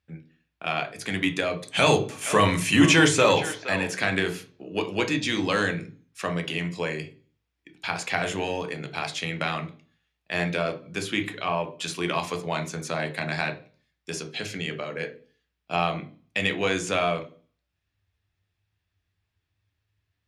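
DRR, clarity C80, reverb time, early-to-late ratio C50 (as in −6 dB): 6.0 dB, 20.0 dB, 0.40 s, 14.0 dB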